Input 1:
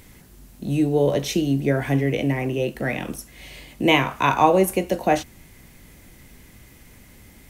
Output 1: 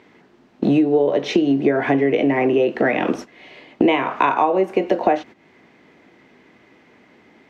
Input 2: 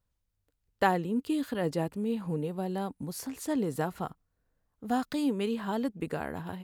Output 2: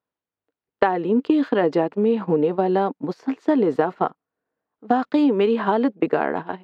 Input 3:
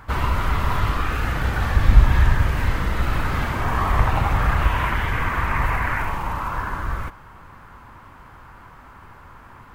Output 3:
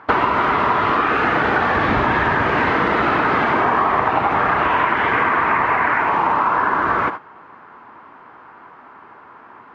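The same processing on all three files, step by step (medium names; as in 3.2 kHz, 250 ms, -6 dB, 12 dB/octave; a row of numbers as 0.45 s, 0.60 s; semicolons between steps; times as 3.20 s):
band-stop 540 Hz, Q 12; gate -36 dBFS, range -15 dB; Chebyshev high-pass 360 Hz, order 2; treble shelf 3.2 kHz -9 dB; compression 12:1, threshold -34 dBFS; distance through air 190 m; peak normalisation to -3 dBFS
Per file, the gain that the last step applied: +21.0 dB, +20.0 dB, +21.5 dB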